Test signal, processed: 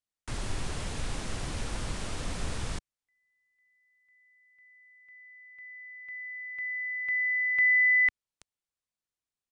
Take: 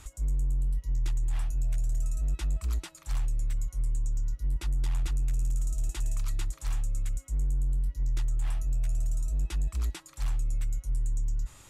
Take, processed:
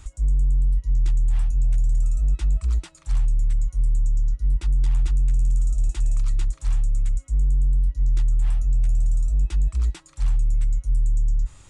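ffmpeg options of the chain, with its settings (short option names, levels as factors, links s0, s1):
-af "lowshelf=f=130:g=9.5,aresample=22050,aresample=44100"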